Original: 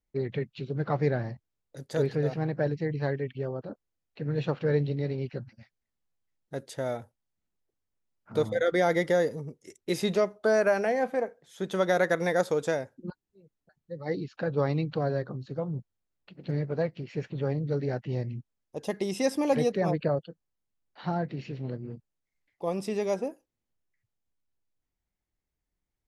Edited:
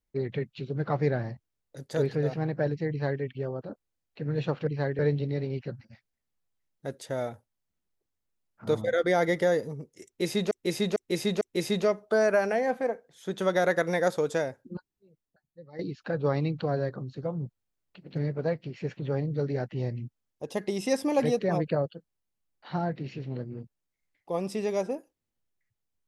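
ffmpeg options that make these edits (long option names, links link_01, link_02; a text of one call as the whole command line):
ffmpeg -i in.wav -filter_complex "[0:a]asplit=7[link_01][link_02][link_03][link_04][link_05][link_06][link_07];[link_01]atrim=end=4.672[link_08];[link_02]atrim=start=2.898:end=3.222[link_09];[link_03]atrim=start=4.668:end=10.192[link_10];[link_04]atrim=start=9.738:end=10.192[link_11];[link_05]atrim=start=9.738:end=10.192[link_12];[link_06]atrim=start=9.738:end=14.12,asetpts=PTS-STARTPTS,afade=type=out:start_time=3.242:duration=1.14:silence=0.211349[link_13];[link_07]atrim=start=14.12,asetpts=PTS-STARTPTS,afade=type=in:duration=0.004:curve=hsin:silence=0.211349[link_14];[link_08][link_09]acrossfade=duration=0.004:curve1=hsin:curve2=hsin[link_15];[link_15][link_10]acrossfade=duration=0.004:curve1=hsin:curve2=hsin[link_16];[link_16][link_11]acrossfade=duration=0.004:curve1=hsin:curve2=hsin[link_17];[link_17][link_12]acrossfade=duration=0.004:curve1=hsin:curve2=hsin[link_18];[link_13][link_14]concat=n=2:v=0:a=1[link_19];[link_18][link_19]acrossfade=duration=0.004:curve1=hsin:curve2=hsin" out.wav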